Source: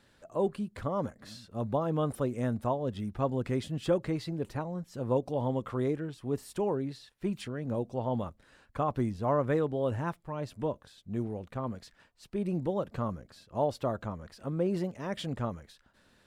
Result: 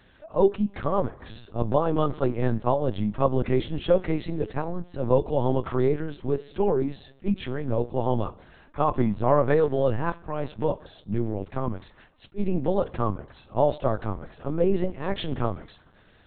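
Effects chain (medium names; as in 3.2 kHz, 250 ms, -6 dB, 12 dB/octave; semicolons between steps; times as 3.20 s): two-slope reverb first 0.36 s, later 1.8 s, from -17 dB, DRR 13 dB; LPC vocoder at 8 kHz pitch kept; attacks held to a fixed rise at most 480 dB/s; trim +7.5 dB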